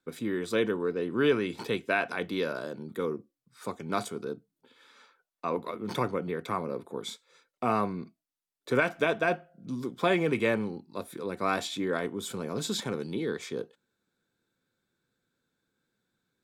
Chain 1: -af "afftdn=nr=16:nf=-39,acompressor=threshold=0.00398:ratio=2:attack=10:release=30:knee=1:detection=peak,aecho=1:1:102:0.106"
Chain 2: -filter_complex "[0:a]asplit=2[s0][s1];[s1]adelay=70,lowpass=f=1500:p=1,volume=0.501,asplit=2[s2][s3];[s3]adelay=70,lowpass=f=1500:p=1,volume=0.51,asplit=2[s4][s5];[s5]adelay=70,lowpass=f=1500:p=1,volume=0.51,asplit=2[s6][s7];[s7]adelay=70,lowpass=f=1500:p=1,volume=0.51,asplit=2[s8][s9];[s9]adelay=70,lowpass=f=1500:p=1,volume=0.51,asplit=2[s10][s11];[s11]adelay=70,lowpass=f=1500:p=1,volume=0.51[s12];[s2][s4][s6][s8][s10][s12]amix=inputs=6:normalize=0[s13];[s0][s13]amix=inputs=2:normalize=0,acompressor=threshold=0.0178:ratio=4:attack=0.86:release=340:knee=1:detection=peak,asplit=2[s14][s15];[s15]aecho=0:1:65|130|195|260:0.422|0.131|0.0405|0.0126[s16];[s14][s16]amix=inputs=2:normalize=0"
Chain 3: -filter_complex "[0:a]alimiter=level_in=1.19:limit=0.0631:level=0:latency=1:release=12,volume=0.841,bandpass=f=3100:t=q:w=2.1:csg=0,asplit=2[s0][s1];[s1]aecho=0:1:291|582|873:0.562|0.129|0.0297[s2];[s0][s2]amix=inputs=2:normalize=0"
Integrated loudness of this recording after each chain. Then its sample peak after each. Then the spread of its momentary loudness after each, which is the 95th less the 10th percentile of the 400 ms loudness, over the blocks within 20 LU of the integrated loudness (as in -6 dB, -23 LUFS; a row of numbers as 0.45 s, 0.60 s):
-41.5 LUFS, -40.5 LUFS, -46.5 LUFS; -24.5 dBFS, -26.0 dBFS, -28.5 dBFS; 8 LU, 10 LU, 17 LU